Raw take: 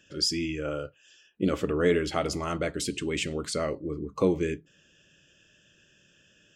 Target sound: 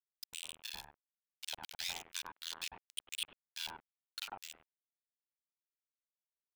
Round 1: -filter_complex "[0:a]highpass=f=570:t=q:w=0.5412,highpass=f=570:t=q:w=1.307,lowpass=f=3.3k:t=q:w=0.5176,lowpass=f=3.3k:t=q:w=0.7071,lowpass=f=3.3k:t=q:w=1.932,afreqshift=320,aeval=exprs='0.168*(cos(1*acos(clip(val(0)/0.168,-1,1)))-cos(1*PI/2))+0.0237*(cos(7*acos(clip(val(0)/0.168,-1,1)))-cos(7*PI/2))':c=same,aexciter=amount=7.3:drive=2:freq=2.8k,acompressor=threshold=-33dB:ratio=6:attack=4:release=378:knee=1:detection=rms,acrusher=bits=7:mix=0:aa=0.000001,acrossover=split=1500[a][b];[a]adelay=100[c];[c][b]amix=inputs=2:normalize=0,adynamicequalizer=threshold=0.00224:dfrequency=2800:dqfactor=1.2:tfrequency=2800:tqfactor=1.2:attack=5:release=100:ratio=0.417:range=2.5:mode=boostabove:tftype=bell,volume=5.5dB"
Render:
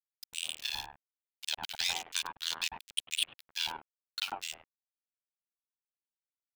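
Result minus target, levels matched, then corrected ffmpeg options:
compressor: peak gain reduction -8 dB
-filter_complex "[0:a]highpass=f=570:t=q:w=0.5412,highpass=f=570:t=q:w=1.307,lowpass=f=3.3k:t=q:w=0.5176,lowpass=f=3.3k:t=q:w=0.7071,lowpass=f=3.3k:t=q:w=1.932,afreqshift=320,aeval=exprs='0.168*(cos(1*acos(clip(val(0)/0.168,-1,1)))-cos(1*PI/2))+0.0237*(cos(7*acos(clip(val(0)/0.168,-1,1)))-cos(7*PI/2))':c=same,aexciter=amount=7.3:drive=2:freq=2.8k,acompressor=threshold=-42.5dB:ratio=6:attack=4:release=378:knee=1:detection=rms,acrusher=bits=7:mix=0:aa=0.000001,acrossover=split=1500[a][b];[a]adelay=100[c];[c][b]amix=inputs=2:normalize=0,adynamicequalizer=threshold=0.00224:dfrequency=2800:dqfactor=1.2:tfrequency=2800:tqfactor=1.2:attack=5:release=100:ratio=0.417:range=2.5:mode=boostabove:tftype=bell,volume=5.5dB"

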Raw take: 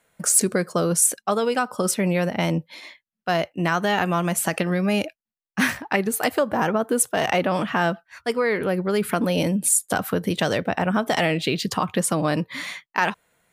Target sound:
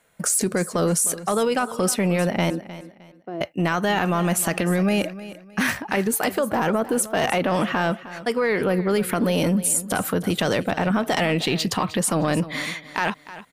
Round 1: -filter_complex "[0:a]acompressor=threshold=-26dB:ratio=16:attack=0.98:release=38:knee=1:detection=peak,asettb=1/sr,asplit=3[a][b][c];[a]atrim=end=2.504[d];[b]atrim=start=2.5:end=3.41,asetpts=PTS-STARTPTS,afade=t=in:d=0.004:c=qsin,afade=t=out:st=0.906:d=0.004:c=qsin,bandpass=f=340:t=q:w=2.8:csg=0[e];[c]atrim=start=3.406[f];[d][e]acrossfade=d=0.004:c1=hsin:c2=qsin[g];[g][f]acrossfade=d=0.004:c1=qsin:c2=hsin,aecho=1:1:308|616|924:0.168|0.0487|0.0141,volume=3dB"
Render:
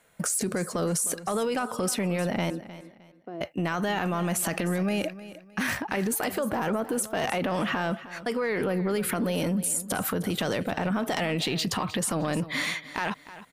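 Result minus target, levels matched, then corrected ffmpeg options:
compressor: peak gain reduction +6.5 dB
-filter_complex "[0:a]acompressor=threshold=-19dB:ratio=16:attack=0.98:release=38:knee=1:detection=peak,asettb=1/sr,asplit=3[a][b][c];[a]atrim=end=2.504[d];[b]atrim=start=2.5:end=3.41,asetpts=PTS-STARTPTS,afade=t=in:d=0.004:c=qsin,afade=t=out:st=0.906:d=0.004:c=qsin,bandpass=f=340:t=q:w=2.8:csg=0[e];[c]atrim=start=3.406[f];[d][e]acrossfade=d=0.004:c1=hsin:c2=qsin[g];[g][f]acrossfade=d=0.004:c1=qsin:c2=hsin,aecho=1:1:308|616|924:0.168|0.0487|0.0141,volume=3dB"

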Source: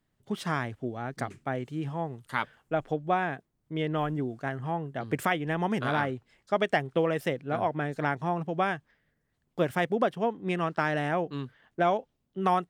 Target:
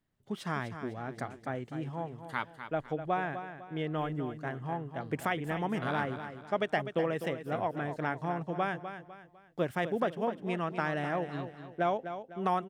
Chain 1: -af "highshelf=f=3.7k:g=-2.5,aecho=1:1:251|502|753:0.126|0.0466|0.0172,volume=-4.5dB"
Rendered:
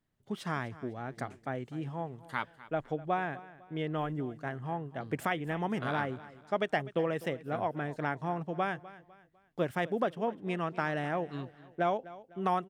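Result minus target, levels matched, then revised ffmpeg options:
echo-to-direct -8 dB
-af "highshelf=f=3.7k:g=-2.5,aecho=1:1:251|502|753|1004:0.316|0.117|0.0433|0.016,volume=-4.5dB"

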